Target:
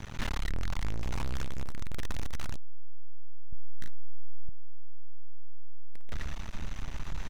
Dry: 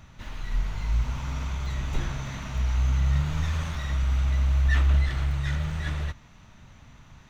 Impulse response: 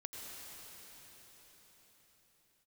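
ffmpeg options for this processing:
-filter_complex "[0:a]aecho=1:1:117|234|351|468:0.188|0.081|0.0348|0.015,aeval=exprs='max(val(0),0)':c=same,asettb=1/sr,asplit=3[a][b][c];[a]atrim=end=0.774[d];[b]atrim=start=0.77:end=1.7,asetpts=PTS-STARTPTS,afade=t=in:d=0.004:c=qsin,afade=t=out:st=0.926:d=0.004:c=qsin,acompressor=threshold=-30dB:ratio=6[e];[c]atrim=start=1.696[f];[d][e]acrossfade=d=0.004:c1=hsin:c2=qsin[g];[g][f]acrossfade=d=0.004:c1=qsin:c2=hsin,asubboost=boost=4:cutoff=54,aeval=exprs='clip(val(0),-1,0.015)':c=same,asettb=1/sr,asplit=3[h][i][j];[h]atrim=end=3.494[k];[i]atrim=start=3.49:end=4.49,asetpts=PTS-STARTPTS,afade=t=in:d=0.004:c=qsin,afade=t=out:st=0.996:d=0.004:c=qsin,asplit=2[l][m];[m]adelay=37,volume=-4.5dB[n];[l][n]amix=inputs=2:normalize=0,atrim=end_sample=44100[o];[j]atrim=start=4.486[p];[k][o]acrossfade=d=0.004:c1=hsin:c2=qsin[q];[q][p]acrossfade=d=0.004:c1=qsin:c2=hsin,volume=13dB"

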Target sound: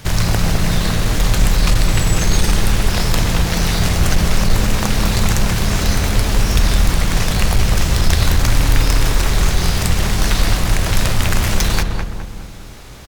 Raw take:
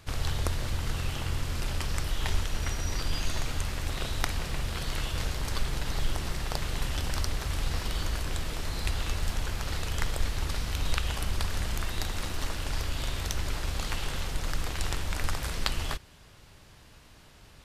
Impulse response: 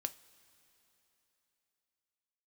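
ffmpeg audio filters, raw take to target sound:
-filter_complex "[0:a]aeval=exprs='0.501*sin(PI/2*3.55*val(0)/0.501)':c=same,asplit=2[a][b];[b]adelay=280,lowpass=f=1.1k:p=1,volume=-3dB,asplit=2[c][d];[d]adelay=280,lowpass=f=1.1k:p=1,volume=0.53,asplit=2[e][f];[f]adelay=280,lowpass=f=1.1k:p=1,volume=0.53,asplit=2[g][h];[h]adelay=280,lowpass=f=1.1k:p=1,volume=0.53,asplit=2[i][j];[j]adelay=280,lowpass=f=1.1k:p=1,volume=0.53,asplit=2[k][l];[l]adelay=280,lowpass=f=1.1k:p=1,volume=0.53,asplit=2[m][n];[n]adelay=280,lowpass=f=1.1k:p=1,volume=0.53[o];[a][c][e][g][i][k][m][o]amix=inputs=8:normalize=0,asetrate=59535,aresample=44100"

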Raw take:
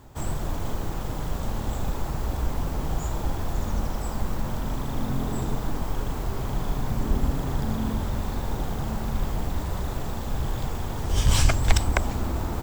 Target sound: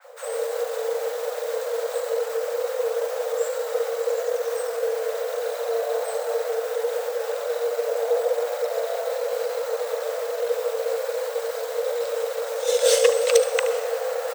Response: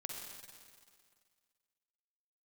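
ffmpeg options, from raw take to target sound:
-filter_complex "[0:a]equalizer=f=800:w=2.7:g=-2.5,areverse,acompressor=mode=upward:threshold=-24dB:ratio=2.5,areverse,atempo=0.88,afreqshift=450,acrossover=split=1000[a][b];[a]adelay=40[c];[c][b]amix=inputs=2:normalize=0,asplit=2[d][e];[1:a]atrim=start_sample=2205,adelay=74[f];[e][f]afir=irnorm=-1:irlink=0,volume=-8.5dB[g];[d][g]amix=inputs=2:normalize=0,adynamicequalizer=threshold=0.01:dfrequency=2700:dqfactor=0.7:tfrequency=2700:tqfactor=0.7:attack=5:release=100:ratio=0.375:range=2:mode=boostabove:tftype=highshelf"

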